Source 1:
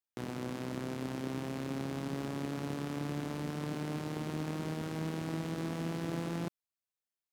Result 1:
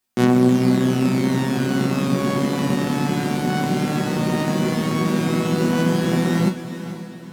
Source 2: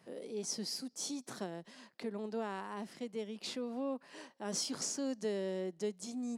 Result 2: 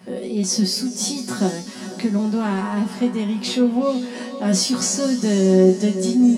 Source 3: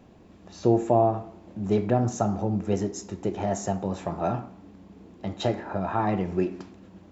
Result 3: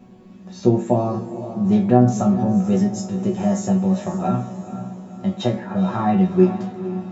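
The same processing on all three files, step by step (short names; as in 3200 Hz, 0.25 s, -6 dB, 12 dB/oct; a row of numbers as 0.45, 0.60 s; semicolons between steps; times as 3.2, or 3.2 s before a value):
bell 210 Hz +14.5 dB 0.34 oct; resonator bank B2 fifth, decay 0.21 s; diffused feedback echo 0.484 s, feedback 45%, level -12 dB; match loudness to -20 LUFS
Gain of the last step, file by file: +28.0, +27.0, +14.0 dB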